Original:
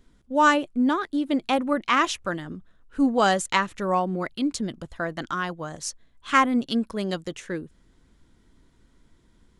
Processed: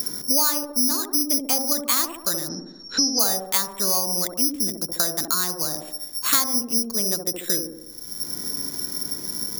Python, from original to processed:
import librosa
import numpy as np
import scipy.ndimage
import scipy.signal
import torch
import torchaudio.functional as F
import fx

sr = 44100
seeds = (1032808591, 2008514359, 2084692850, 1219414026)

p1 = (np.kron(scipy.signal.resample_poly(x, 1, 8), np.eye(8)[0]) * 8)[:len(x)]
p2 = fx.lowpass(p1, sr, hz=5000.0, slope=24, at=(2.47, 3.19), fade=0.02)
p3 = p2 + fx.echo_wet_bandpass(p2, sr, ms=69, feedback_pct=46, hz=440.0, wet_db=-3.0, dry=0)
p4 = fx.band_squash(p3, sr, depth_pct=100)
y = p4 * 10.0 ** (-7.5 / 20.0)